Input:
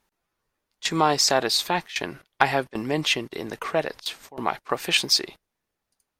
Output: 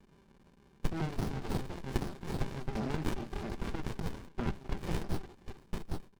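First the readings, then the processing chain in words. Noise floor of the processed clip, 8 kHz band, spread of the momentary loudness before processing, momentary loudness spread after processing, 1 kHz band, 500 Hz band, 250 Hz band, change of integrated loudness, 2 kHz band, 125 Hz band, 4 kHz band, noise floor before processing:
-63 dBFS, -24.0 dB, 13 LU, 6 LU, -18.0 dB, -14.5 dB, -6.5 dB, -15.0 dB, -19.0 dB, 0.0 dB, -25.5 dB, -82 dBFS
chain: repeats whose band climbs or falls 265 ms, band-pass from 560 Hz, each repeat 1.4 oct, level -5.5 dB; gate with hold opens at -25 dBFS; peaking EQ 4.9 kHz +11.5 dB 0.69 oct; compression 4:1, threshold -25 dBFS, peak gain reduction 17 dB; crackle 490 per s -48 dBFS; brick-wall FIR low-pass 10 kHz; treble shelf 6.4 kHz -10.5 dB; band-stop 590 Hz, Q 12; comb 5.1 ms, depth 63%; sliding maximum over 65 samples; trim -2 dB

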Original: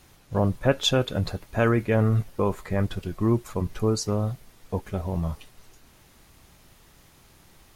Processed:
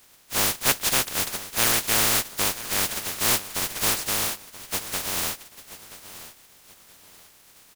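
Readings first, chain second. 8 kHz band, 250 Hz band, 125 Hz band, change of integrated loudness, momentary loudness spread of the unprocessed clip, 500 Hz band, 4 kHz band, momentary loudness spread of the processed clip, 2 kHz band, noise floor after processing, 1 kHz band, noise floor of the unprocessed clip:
+16.5 dB, -10.5 dB, -14.5 dB, +3.0 dB, 10 LU, -8.5 dB, +6.5 dB, 21 LU, +6.5 dB, -55 dBFS, +2.5 dB, -56 dBFS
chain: spectral contrast reduction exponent 0.1; feedback delay 979 ms, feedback 32%, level -15.5 dB

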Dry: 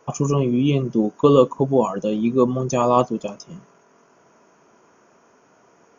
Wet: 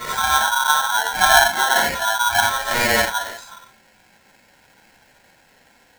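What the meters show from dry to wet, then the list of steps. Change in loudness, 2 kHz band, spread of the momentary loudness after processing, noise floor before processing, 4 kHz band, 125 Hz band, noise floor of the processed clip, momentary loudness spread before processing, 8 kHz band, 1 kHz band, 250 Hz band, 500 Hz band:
+2.5 dB, +24.5 dB, 8 LU, -57 dBFS, +17.0 dB, -15.0 dB, -56 dBFS, 9 LU, no reading, +7.5 dB, -16.0 dB, -8.0 dB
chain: phase randomisation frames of 200 ms; low-pass that closes with the level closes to 900 Hz, closed at -14 dBFS; polarity switched at an audio rate 1.2 kHz; trim +1 dB

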